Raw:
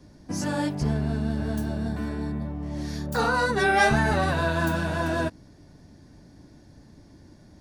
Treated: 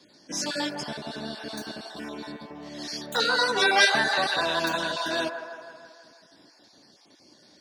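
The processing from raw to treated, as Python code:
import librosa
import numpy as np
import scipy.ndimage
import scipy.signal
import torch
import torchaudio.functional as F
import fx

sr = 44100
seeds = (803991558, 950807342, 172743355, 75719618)

y = fx.spec_dropout(x, sr, seeds[0], share_pct=26)
y = scipy.signal.sosfilt(scipy.signal.butter(2, 330.0, 'highpass', fs=sr, output='sos'), y)
y = fx.peak_eq(y, sr, hz=4100.0, db=14.0, octaves=1.4)
y = fx.echo_wet_bandpass(y, sr, ms=161, feedback_pct=60, hz=870.0, wet_db=-6.5)
y = y * librosa.db_to_amplitude(-1.5)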